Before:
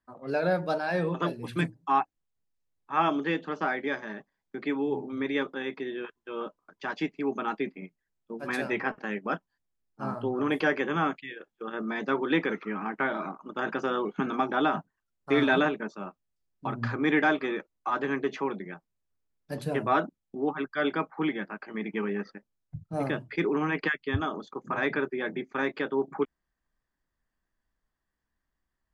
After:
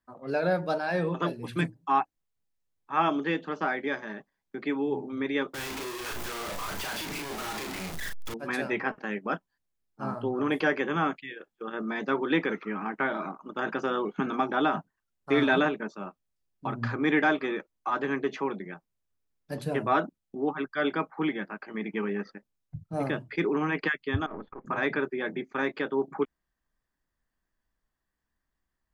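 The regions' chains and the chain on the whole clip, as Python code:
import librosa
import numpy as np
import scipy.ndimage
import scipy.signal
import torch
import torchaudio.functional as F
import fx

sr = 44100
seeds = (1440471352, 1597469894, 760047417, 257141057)

y = fx.chain(x, sr, fx.clip_1bit(),
    fx.peak_eq(hz=250.0, db=-5.5, octaves=1.6),
    fx.doubler(ms=37.0, db=-4.0), at=(5.54, 8.34))
y = fx.chain(y, sr, fx.halfwave_gain(db=-7.0),
    fx.lowpass(hz=2100.0, slope=24),
    fx.over_compress(threshold_db=-40.0, ratio=-1.0), at=(24.26, 24.66))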